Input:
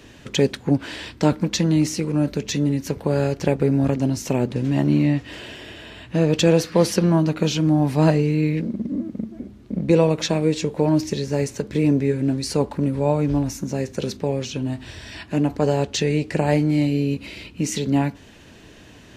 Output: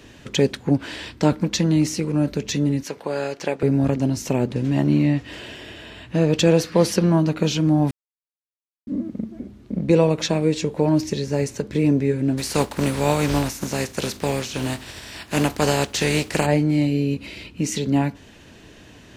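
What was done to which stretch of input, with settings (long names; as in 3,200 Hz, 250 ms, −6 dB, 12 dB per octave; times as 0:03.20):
0:02.83–0:03.63: meter weighting curve A
0:07.91–0:08.87: silence
0:12.37–0:16.45: compressing power law on the bin magnitudes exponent 0.58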